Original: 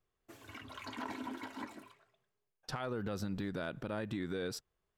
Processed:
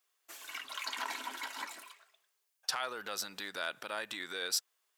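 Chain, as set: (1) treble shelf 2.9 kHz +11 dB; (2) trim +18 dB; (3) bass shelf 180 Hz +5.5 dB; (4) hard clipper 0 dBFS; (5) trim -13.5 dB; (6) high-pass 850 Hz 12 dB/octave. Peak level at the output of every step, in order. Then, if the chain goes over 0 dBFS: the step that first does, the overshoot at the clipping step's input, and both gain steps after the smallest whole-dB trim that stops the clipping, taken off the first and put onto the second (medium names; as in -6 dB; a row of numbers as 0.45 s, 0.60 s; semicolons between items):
-22.0 dBFS, -4.0 dBFS, -4.0 dBFS, -4.0 dBFS, -17.5 dBFS, -17.0 dBFS; nothing clips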